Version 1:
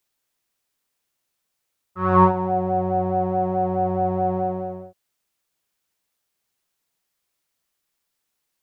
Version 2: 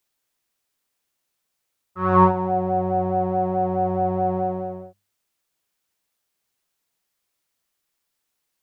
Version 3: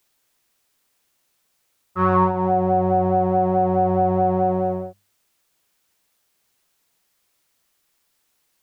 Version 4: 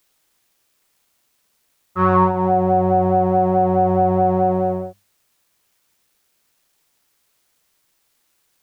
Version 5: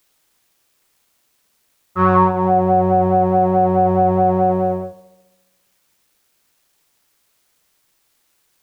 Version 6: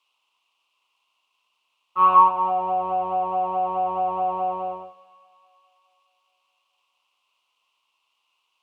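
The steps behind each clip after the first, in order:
hum notches 50/100/150/200 Hz
compression 4:1, threshold -24 dBFS, peak gain reduction 12 dB; trim +8.5 dB
bit crusher 11-bit; trim +2.5 dB
filtered feedback delay 69 ms, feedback 70%, low-pass 1.7 kHz, level -14 dB; trim +2 dB
two resonant band-passes 1.7 kHz, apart 1.4 oct; feedback echo behind a high-pass 418 ms, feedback 44%, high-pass 1.4 kHz, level -16 dB; trim +6 dB

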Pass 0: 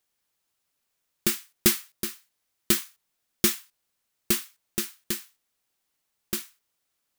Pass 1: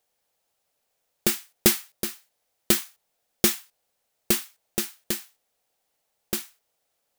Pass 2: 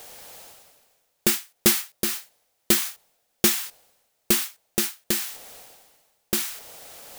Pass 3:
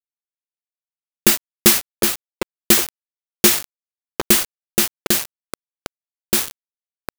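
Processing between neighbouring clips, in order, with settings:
high-order bell 610 Hz +9 dB 1.1 oct; trim +1.5 dB
reverse; upward compressor, threshold -25 dBFS; reverse; saturation -13 dBFS, distortion -12 dB; trim +4 dB
repeats whose band climbs or falls 755 ms, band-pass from 460 Hz, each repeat 0.7 oct, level -3.5 dB; bit crusher 4-bit; trim +6 dB

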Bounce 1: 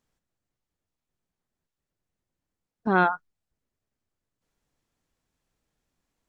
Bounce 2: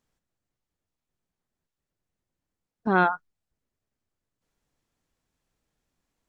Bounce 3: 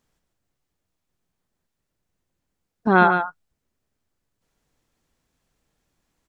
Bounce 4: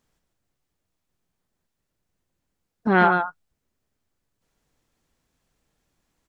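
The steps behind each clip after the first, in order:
no audible change
delay 143 ms -7.5 dB; trim +5.5 dB
transformer saturation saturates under 680 Hz

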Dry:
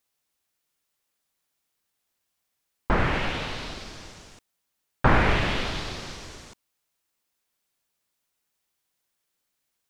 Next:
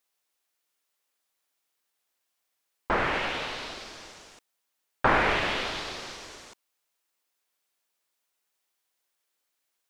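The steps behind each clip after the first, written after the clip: tone controls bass -13 dB, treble -1 dB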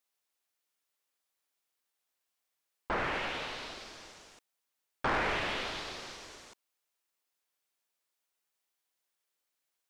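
saturation -19.5 dBFS, distortion -13 dB; trim -5 dB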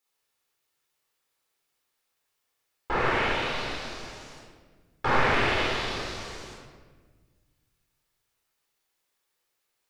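simulated room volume 1300 m³, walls mixed, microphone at 4.1 m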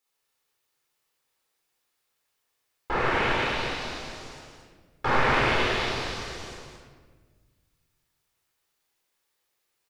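delay 223 ms -5 dB

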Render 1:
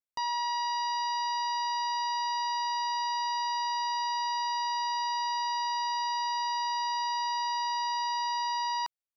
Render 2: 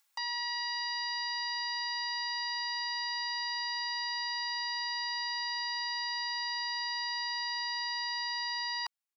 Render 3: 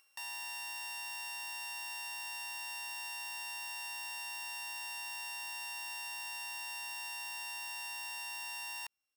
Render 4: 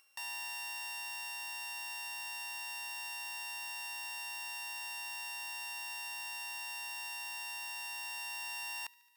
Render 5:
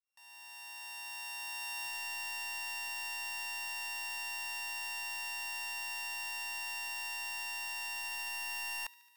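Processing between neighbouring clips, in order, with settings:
high-pass 770 Hz 24 dB/octave; comb 3.6 ms, depth 93%; upward compressor, threshold -56 dBFS; trim -1.5 dB
sorted samples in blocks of 16 samples; peak limiter -38.5 dBFS, peak gain reduction 11.5 dB; trim +4 dB
gain riding 2 s; hard clipper -34.5 dBFS, distortion -32 dB; feedback echo behind a high-pass 73 ms, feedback 75%, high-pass 1.7 kHz, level -20.5 dB
fade-in on the opening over 2.08 s; in parallel at -5.5 dB: integer overflow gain 35.5 dB

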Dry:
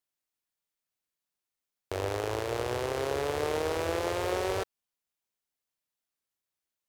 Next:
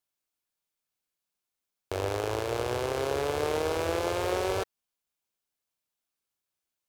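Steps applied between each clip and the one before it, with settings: band-stop 1.9 kHz, Q 13; trim +1.5 dB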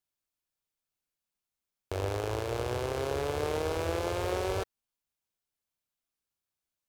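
bass shelf 140 Hz +8 dB; trim -3.5 dB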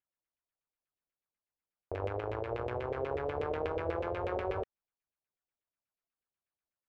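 LFO low-pass saw down 8.2 Hz 460–2700 Hz; trim -6 dB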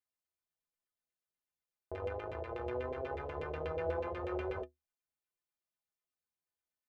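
inharmonic resonator 75 Hz, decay 0.23 s, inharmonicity 0.03; trim +3.5 dB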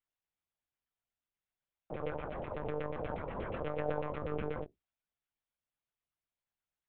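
monotone LPC vocoder at 8 kHz 150 Hz; trim +1 dB

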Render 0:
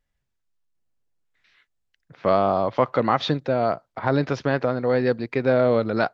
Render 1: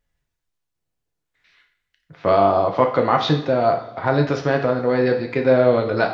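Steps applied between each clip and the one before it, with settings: two-slope reverb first 0.57 s, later 3.9 s, from -27 dB, DRR 2.5 dB; trim +1.5 dB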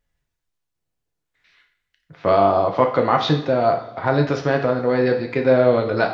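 no audible change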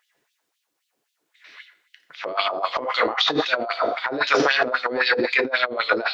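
LFO high-pass sine 3.8 Hz 280–3500 Hz; compressor with a negative ratio -26 dBFS, ratio -1; trim +2.5 dB

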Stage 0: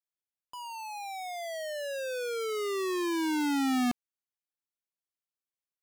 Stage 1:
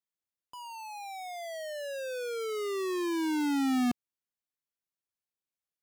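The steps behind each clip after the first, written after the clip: peaking EQ 150 Hz +4.5 dB 2.7 oct; trim -3 dB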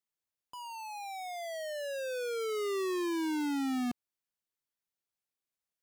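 peak limiter -30.5 dBFS, peak gain reduction 6 dB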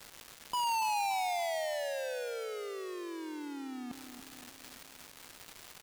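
crackle 450 per s -48 dBFS; compressor with a negative ratio -43 dBFS, ratio -1; feedback delay 285 ms, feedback 52%, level -10 dB; trim +5.5 dB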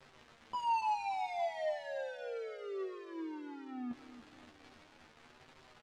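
flange 0.54 Hz, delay 7.5 ms, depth 3 ms, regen +39%; tape spacing loss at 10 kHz 25 dB; doubling 13 ms -4 dB; trim +1 dB

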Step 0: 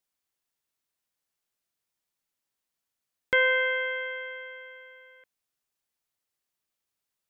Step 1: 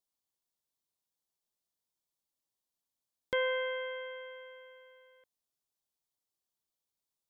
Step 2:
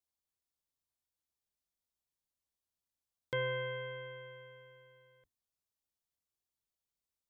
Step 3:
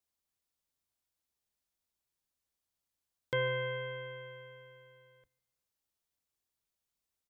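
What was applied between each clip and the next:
high-order bell 1.9 kHz -8.5 dB 1.3 oct; trim -4.5 dB
octave divider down 2 oct, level +4 dB; trim -4.5 dB
feedback delay 149 ms, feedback 41%, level -24 dB; trim +3 dB

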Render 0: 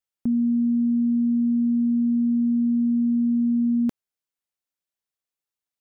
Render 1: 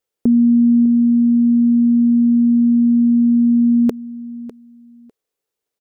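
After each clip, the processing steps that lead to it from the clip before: peaking EQ 440 Hz +14.5 dB 0.79 oct; feedback delay 601 ms, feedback 17%, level -16.5 dB; trim +6.5 dB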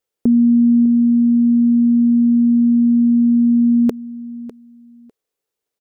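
no audible change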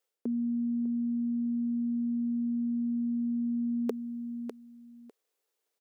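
high-pass 350 Hz 12 dB/octave; reverse; compression 6:1, threshold -30 dBFS, peak gain reduction 11.5 dB; reverse

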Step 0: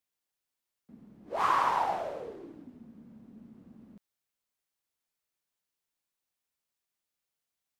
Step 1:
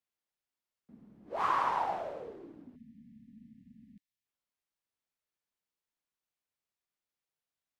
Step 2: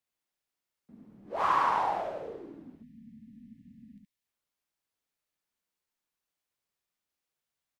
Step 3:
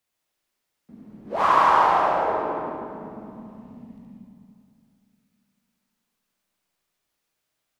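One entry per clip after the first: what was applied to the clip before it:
treble shelf 5.4 kHz -8 dB; spectral selection erased 2.76–4.26 s, 280–1700 Hz; trim -3 dB
delay 71 ms -3.5 dB; trim +2 dB
reverberation RT60 2.7 s, pre-delay 90 ms, DRR 0.5 dB; trim +7.5 dB

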